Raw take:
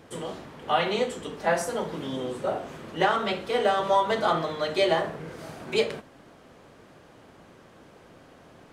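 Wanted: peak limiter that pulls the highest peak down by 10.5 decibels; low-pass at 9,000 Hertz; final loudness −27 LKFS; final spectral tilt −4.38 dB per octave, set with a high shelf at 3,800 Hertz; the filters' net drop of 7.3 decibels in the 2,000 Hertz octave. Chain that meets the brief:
low-pass filter 9,000 Hz
parametric band 2,000 Hz −8.5 dB
high-shelf EQ 3,800 Hz −5.5 dB
level +6 dB
brickwall limiter −16 dBFS

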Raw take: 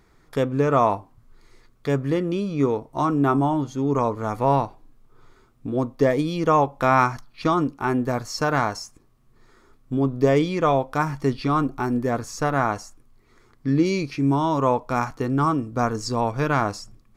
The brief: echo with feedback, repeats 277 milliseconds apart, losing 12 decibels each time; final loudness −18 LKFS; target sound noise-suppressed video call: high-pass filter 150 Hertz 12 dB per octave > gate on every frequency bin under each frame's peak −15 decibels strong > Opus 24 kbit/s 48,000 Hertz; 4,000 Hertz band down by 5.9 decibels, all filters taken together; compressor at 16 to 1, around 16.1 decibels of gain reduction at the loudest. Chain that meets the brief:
parametric band 4,000 Hz −8.5 dB
downward compressor 16 to 1, threshold −30 dBFS
high-pass filter 150 Hz 12 dB per octave
repeating echo 277 ms, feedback 25%, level −12 dB
gate on every frequency bin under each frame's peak −15 dB strong
level +18.5 dB
Opus 24 kbit/s 48,000 Hz

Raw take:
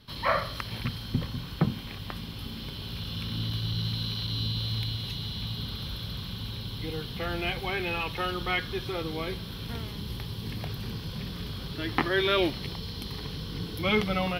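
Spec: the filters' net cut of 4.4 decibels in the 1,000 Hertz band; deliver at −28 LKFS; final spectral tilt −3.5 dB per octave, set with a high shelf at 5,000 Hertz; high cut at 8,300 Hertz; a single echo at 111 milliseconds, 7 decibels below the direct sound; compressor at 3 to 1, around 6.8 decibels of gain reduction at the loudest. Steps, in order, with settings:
low-pass filter 8,300 Hz
parametric band 1,000 Hz −6.5 dB
high-shelf EQ 5,000 Hz +6.5 dB
downward compressor 3 to 1, threshold −30 dBFS
single-tap delay 111 ms −7 dB
level +6 dB

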